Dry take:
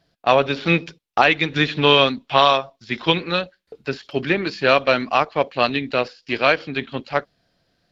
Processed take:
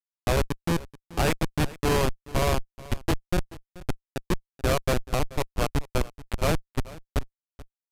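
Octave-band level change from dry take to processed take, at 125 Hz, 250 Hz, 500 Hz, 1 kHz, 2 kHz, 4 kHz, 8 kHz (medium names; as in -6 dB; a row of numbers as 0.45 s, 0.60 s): +0.5 dB, -6.0 dB, -9.5 dB, -12.0 dB, -13.5 dB, -14.0 dB, no reading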